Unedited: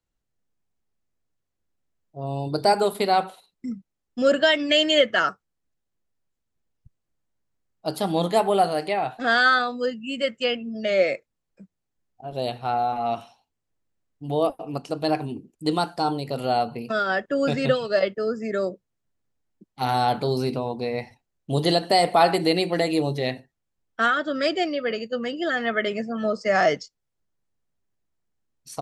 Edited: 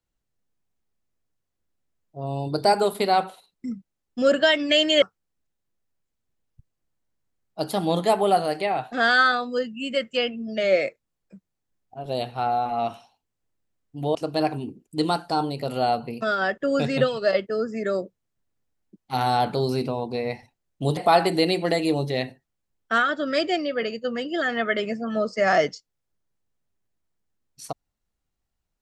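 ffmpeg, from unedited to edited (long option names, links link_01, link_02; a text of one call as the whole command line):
ffmpeg -i in.wav -filter_complex "[0:a]asplit=4[link_01][link_02][link_03][link_04];[link_01]atrim=end=5.022[link_05];[link_02]atrim=start=5.288:end=14.422[link_06];[link_03]atrim=start=14.828:end=21.652[link_07];[link_04]atrim=start=22.048[link_08];[link_05][link_06]acrossfade=duration=0.004:curve1=hsin:curve2=hsin[link_09];[link_09][link_07]acrossfade=duration=0.004:curve1=hsin:curve2=hsin[link_10];[link_10][link_08]acrossfade=duration=0.004:curve1=hsin:curve2=hsin" out.wav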